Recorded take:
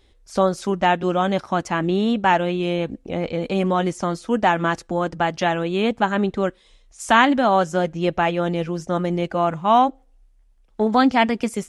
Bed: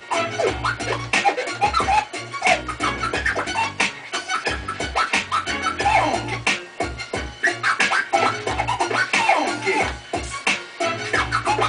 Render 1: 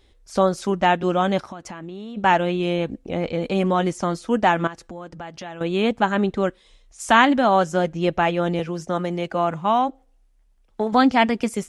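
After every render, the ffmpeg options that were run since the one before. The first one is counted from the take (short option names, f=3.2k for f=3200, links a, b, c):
-filter_complex "[0:a]asplit=3[a][b][c];[a]afade=t=out:st=1.47:d=0.02[d];[b]acompressor=threshold=-31dB:ratio=12:attack=3.2:release=140:knee=1:detection=peak,afade=t=in:st=1.47:d=0.02,afade=t=out:st=2.16:d=0.02[e];[c]afade=t=in:st=2.16:d=0.02[f];[d][e][f]amix=inputs=3:normalize=0,asettb=1/sr,asplit=3[g][h][i];[g]atrim=end=4.674[j];[h]atrim=start=4.67:end=5.61,asetpts=PTS-STARTPTS,afade=t=in:d=0.004:c=qsin,afade=t=out:st=0.936:d=0.004:c=qsin,acompressor=threshold=-36dB:ratio=3:attack=3.2:release=140:knee=1:detection=peak[k];[i]atrim=start=5.606[l];[j][k]acrossfade=d=0.004:c1=hsin:c2=qsin[m];[m][l]acrossfade=d=0.004:c1=qsin:c2=hsin,asettb=1/sr,asplit=3[n][o][p];[n]atrim=end=8.594[q];[o]atrim=start=8.59:end=10.93,asetpts=PTS-STARTPTS,afade=t=in:d=0.004:c=qsin,afade=t=out:st=2.336:d=0.004:c=qsin,acrossover=split=90|520[r][s][t];[r]acompressor=threshold=-58dB:ratio=4[u];[s]acompressor=threshold=-25dB:ratio=4[v];[t]acompressor=threshold=-17dB:ratio=4[w];[u][v][w]amix=inputs=3:normalize=0[x];[p]atrim=start=10.926[y];[q][x]acrossfade=d=0.004:c1=hsin:c2=qsin[z];[z][y]acrossfade=d=0.004:c1=qsin:c2=hsin"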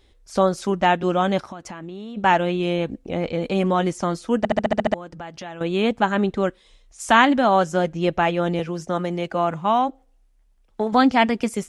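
-filter_complex "[0:a]asplit=9[a][b][c][d][e][f][g][h][i];[a]atrim=end=4.452[j];[b]atrim=start=4.378:end=4.452[k];[c]atrim=start=4.378:end=4.452[l];[d]atrim=start=4.378:end=4.452[m];[e]atrim=start=4.378:end=4.452[n];[f]atrim=start=4.378:end=4.452[o];[g]atrim=start=4.378:end=4.452[p];[h]atrim=start=4.378:end=4.452[q];[i]atrim=start=4.938[r];[j][k]acrossfade=d=0.004:c1=hsin:c2=hsin[s];[s][l]acrossfade=d=0.004:c1=hsin:c2=hsin[t];[t][m]acrossfade=d=0.004:c1=hsin:c2=hsin[u];[u][n]acrossfade=d=0.004:c1=hsin:c2=hsin[v];[v][o]acrossfade=d=0.004:c1=hsin:c2=hsin[w];[w][p]acrossfade=d=0.004:c1=hsin:c2=hsin[x];[x][q]acrossfade=d=0.004:c1=hsin:c2=hsin[y];[y][r]acrossfade=d=0.004:c1=hsin:c2=hsin"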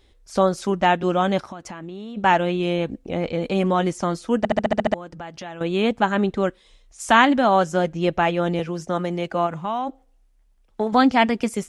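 -filter_complex "[0:a]asplit=3[a][b][c];[a]afade=t=out:st=9.46:d=0.02[d];[b]acompressor=threshold=-26dB:ratio=2:attack=3.2:release=140:knee=1:detection=peak,afade=t=in:st=9.46:d=0.02,afade=t=out:st=9.86:d=0.02[e];[c]afade=t=in:st=9.86:d=0.02[f];[d][e][f]amix=inputs=3:normalize=0"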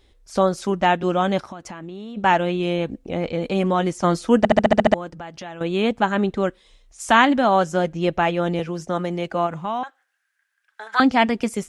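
-filter_complex "[0:a]asettb=1/sr,asplit=3[a][b][c];[a]atrim=end=9.834[d];[b]atrim=start=9.83:end=11,asetpts=PTS-STARTPTS,afade=t=in:d=0.004:c=qsin,afade=t=out:st=1.166:d=0.004:c=qsin,highpass=f=1.6k:t=q:w=14[e];[c]atrim=start=10.996[f];[d][e]acrossfade=d=0.004:c1=hsin:c2=qsin[g];[g][f]acrossfade=d=0.004:c1=qsin:c2=hsin,asplit=3[h][i][j];[h]atrim=end=4.042[k];[i]atrim=start=4.038:end=5.102,asetpts=PTS-STARTPTS,volume=5dB[l];[j]atrim=start=5.098[m];[k][l]acrossfade=d=0.004:c1=hsin:c2=hsin[n];[n][m]acrossfade=d=0.004:c1=hsin:c2=hsin"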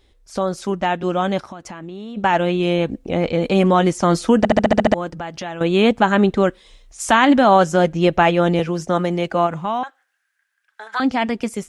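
-af "alimiter=limit=-10dB:level=0:latency=1:release=48,dynaudnorm=f=290:g=17:m=7dB"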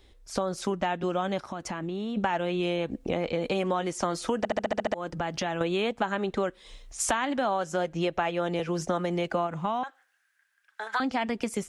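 -filter_complex "[0:a]acrossover=split=360|2100[a][b][c];[a]alimiter=limit=-20.5dB:level=0:latency=1:release=288[d];[d][b][c]amix=inputs=3:normalize=0,acompressor=threshold=-25dB:ratio=6"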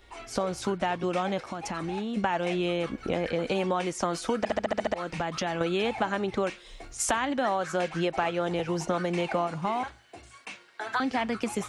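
-filter_complex "[1:a]volume=-22dB[a];[0:a][a]amix=inputs=2:normalize=0"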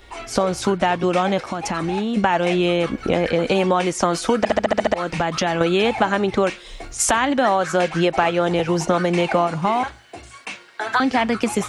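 -af "volume=9.5dB,alimiter=limit=-3dB:level=0:latency=1"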